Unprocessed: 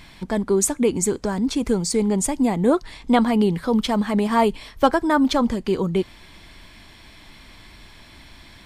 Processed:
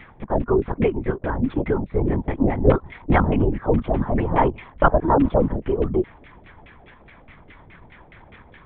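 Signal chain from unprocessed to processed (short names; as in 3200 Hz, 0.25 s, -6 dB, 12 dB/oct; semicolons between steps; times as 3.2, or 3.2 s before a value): LFO low-pass saw down 4.8 Hz 450–2400 Hz; LPC vocoder at 8 kHz whisper; gain -1.5 dB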